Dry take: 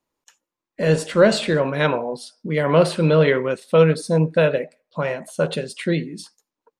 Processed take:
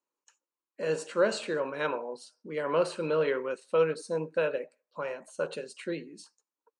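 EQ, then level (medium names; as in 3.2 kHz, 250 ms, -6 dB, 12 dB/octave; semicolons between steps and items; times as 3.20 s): cabinet simulation 380–8600 Hz, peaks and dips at 690 Hz -8 dB, 2 kHz -8 dB, 3.4 kHz -7 dB, 5 kHz -6 dB; band-stop 3.5 kHz, Q 14; -7.5 dB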